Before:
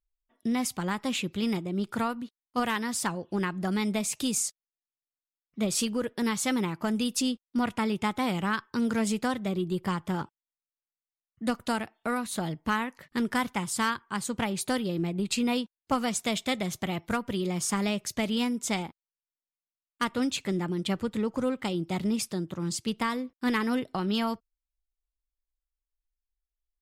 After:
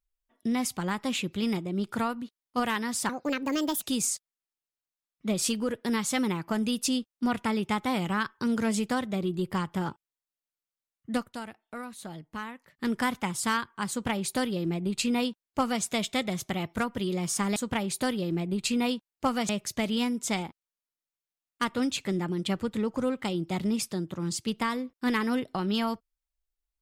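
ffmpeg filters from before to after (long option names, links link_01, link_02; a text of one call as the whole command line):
ffmpeg -i in.wav -filter_complex "[0:a]asplit=7[link_01][link_02][link_03][link_04][link_05][link_06][link_07];[link_01]atrim=end=3.094[link_08];[link_02]atrim=start=3.09:end=4.15,asetpts=PTS-STARTPTS,asetrate=63945,aresample=44100[link_09];[link_03]atrim=start=4.146:end=11.62,asetpts=PTS-STARTPTS,afade=type=out:start_time=7.284:duration=0.19:curve=qsin:silence=0.334965[link_10];[link_04]atrim=start=11.62:end=13.07,asetpts=PTS-STARTPTS,volume=-9.5dB[link_11];[link_05]atrim=start=13.07:end=17.892,asetpts=PTS-STARTPTS,afade=type=in:duration=0.19:curve=qsin:silence=0.334965[link_12];[link_06]atrim=start=14.228:end=16.162[link_13];[link_07]atrim=start=17.888[link_14];[link_08][link_09]acrossfade=duration=0.004:curve1=hsin:curve2=hsin[link_15];[link_10][link_11][link_12]concat=n=3:v=0:a=1[link_16];[link_15][link_16]acrossfade=duration=0.004:curve1=hsin:curve2=hsin[link_17];[link_17][link_13]acrossfade=duration=0.004:curve1=hsin:curve2=hsin[link_18];[link_18][link_14]acrossfade=duration=0.004:curve1=hsin:curve2=hsin" out.wav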